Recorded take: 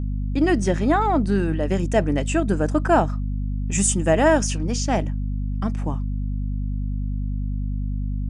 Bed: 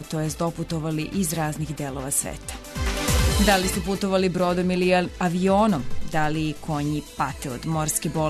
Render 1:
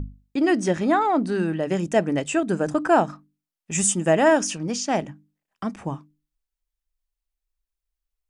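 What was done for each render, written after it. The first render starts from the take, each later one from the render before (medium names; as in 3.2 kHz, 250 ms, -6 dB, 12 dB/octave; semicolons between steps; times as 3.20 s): hum notches 50/100/150/200/250/300 Hz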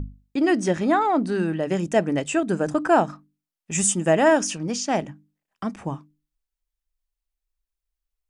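no audible change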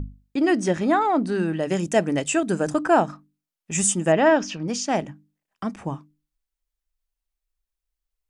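1.54–2.81 s: treble shelf 4 kHz +7 dB; 4.12–4.68 s: low-pass 5 kHz 24 dB/octave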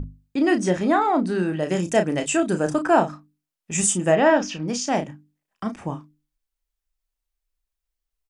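doubling 33 ms -8 dB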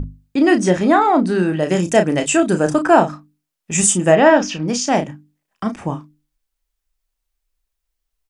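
trim +6 dB; peak limiter -1 dBFS, peak gain reduction 1 dB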